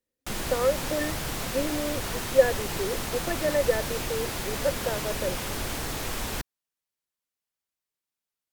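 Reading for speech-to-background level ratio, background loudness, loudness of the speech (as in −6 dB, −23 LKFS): 2.0 dB, −31.5 LKFS, −29.5 LKFS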